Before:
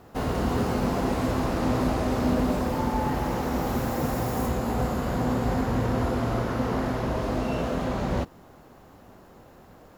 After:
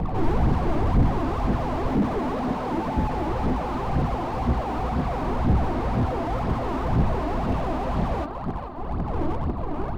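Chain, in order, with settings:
wind on the microphone 260 Hz −21 dBFS
0:01.87–0:02.97: Butterworth high-pass 190 Hz 36 dB per octave
soft clipping −19.5 dBFS, distortion −5 dB
elliptic low-pass filter 4,600 Hz
flat-topped bell 920 Hz +9.5 dB 1 octave
on a send: feedback echo with a low-pass in the loop 439 ms, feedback 58%, low-pass 2,700 Hz, level −11 dB
on the sum: phase shifter 2 Hz, delay 3.5 ms, feedback 66%
slew-rate limiting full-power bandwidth 32 Hz

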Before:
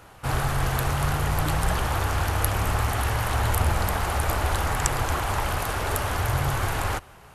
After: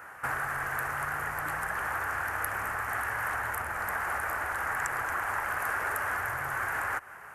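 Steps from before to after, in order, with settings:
high shelf with overshoot 2,500 Hz −14 dB, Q 3
downward compressor 6 to 1, threshold −28 dBFS, peak gain reduction 11 dB
spectral tilt +4 dB per octave

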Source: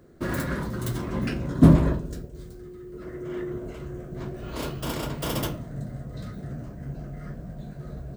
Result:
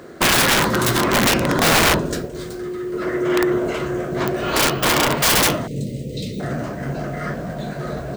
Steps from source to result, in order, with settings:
0:04.70–0:05.17: parametric band 8,000 Hz −6.5 dB 2.6 octaves
0:05.67–0:06.40: elliptic band-stop filter 490–2,500 Hz, stop band 40 dB
mid-hump overdrive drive 28 dB, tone 5,000 Hz, clips at −2.5 dBFS
wrap-around overflow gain 10.5 dB

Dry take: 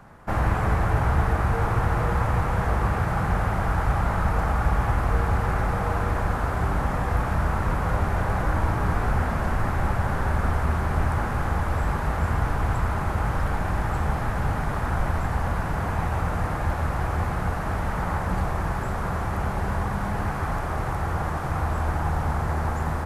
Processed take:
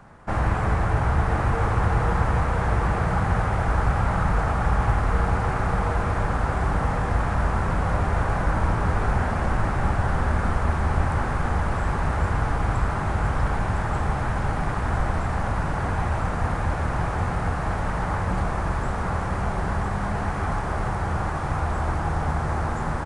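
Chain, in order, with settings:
on a send: single-tap delay 1,009 ms −5.5 dB
on the sum: downsampling to 22,050 Hz

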